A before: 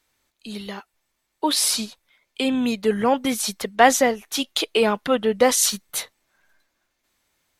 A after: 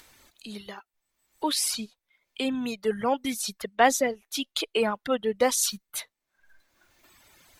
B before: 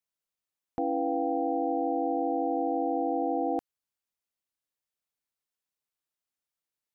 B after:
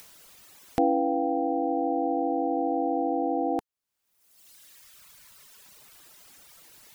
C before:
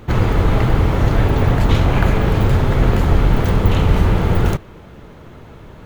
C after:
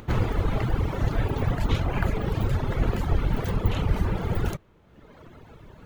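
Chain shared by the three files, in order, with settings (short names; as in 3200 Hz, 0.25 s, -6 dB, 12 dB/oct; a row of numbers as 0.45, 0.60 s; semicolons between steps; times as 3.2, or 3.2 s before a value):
reverb removal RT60 1.5 s; upward compressor, threshold -34 dBFS; match loudness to -27 LUFS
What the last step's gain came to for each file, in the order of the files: -5.5, +7.5, -7.5 dB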